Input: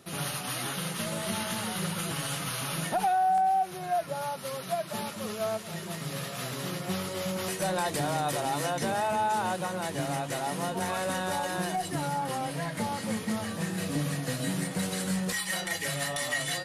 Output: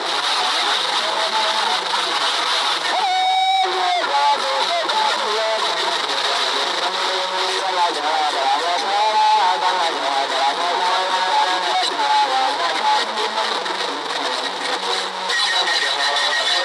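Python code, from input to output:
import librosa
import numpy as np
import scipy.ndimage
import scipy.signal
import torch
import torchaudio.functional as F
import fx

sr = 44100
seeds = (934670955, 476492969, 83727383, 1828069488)

y = fx.halfwave_hold(x, sr)
y = fx.dereverb_blind(y, sr, rt60_s=0.57)
y = fx.over_compress(y, sr, threshold_db=-36.0, ratio=-1.0)
y = fx.fuzz(y, sr, gain_db=47.0, gate_db=-51.0)
y = fx.cabinet(y, sr, low_hz=420.0, low_slope=24, high_hz=7200.0, hz=(580.0, 930.0, 2600.0, 3800.0, 6600.0), db=(-8, 7, -6, 9, -9))
y = y + 10.0 ** (-10.5 / 20.0) * np.pad(y, (int(309 * sr / 1000.0), 0))[:len(y)]
y = y * librosa.db_to_amplitude(-4.0)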